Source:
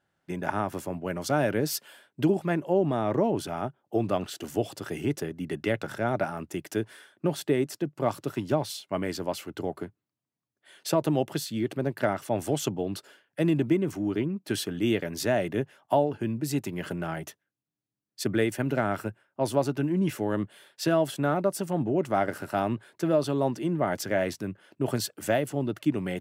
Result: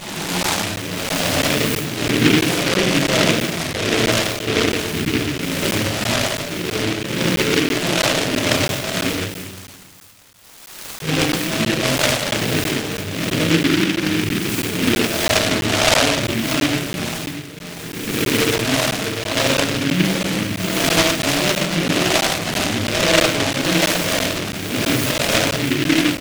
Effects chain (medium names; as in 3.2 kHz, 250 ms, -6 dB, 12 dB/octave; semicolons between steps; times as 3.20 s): reverse spectral sustain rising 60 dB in 1.74 s; delay 640 ms -8.5 dB; reverb removal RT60 1.2 s; 9.10–11.02 s: Chebyshev band-pass 1.3–4.2 kHz, order 4; reverb removal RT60 1.5 s; simulated room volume 580 m³, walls mixed, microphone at 5.5 m; crackling interface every 0.33 s, samples 512, zero, from 0.43 s; delay time shaken by noise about 2.3 kHz, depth 0.27 ms; trim -3.5 dB